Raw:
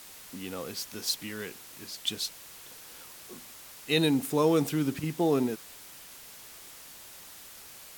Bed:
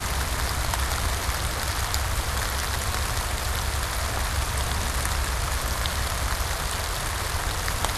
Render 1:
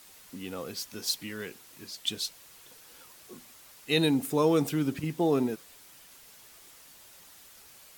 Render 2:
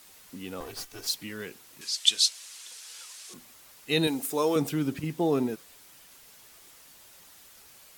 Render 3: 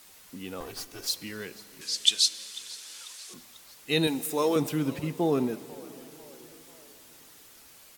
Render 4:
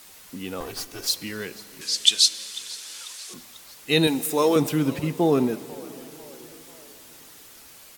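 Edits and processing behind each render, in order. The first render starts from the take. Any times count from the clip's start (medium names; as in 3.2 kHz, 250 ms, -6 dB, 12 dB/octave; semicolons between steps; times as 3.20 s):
noise reduction 6 dB, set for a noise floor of -49 dBFS
0.60–1.07 s: comb filter that takes the minimum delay 2.6 ms; 1.81–3.34 s: frequency weighting ITU-R 468; 4.07–4.56 s: tone controls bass -13 dB, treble +5 dB
frequency-shifting echo 493 ms, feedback 47%, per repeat +59 Hz, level -21 dB; plate-style reverb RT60 4.6 s, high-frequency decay 0.7×, DRR 16.5 dB
trim +5.5 dB; peak limiter -1 dBFS, peak gain reduction 1.5 dB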